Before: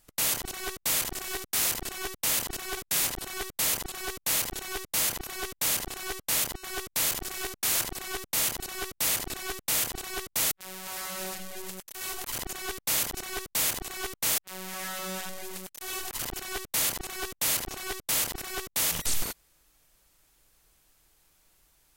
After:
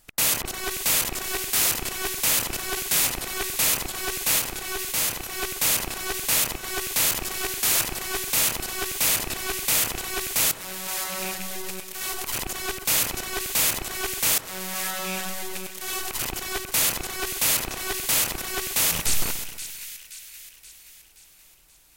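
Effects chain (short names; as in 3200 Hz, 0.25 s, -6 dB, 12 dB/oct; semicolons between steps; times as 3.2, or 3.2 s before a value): rattling part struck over -45 dBFS, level -28 dBFS; 4.39–5.38 harmonic-percussive split percussive -5 dB; split-band echo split 1700 Hz, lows 0.132 s, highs 0.526 s, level -11 dB; gain +5 dB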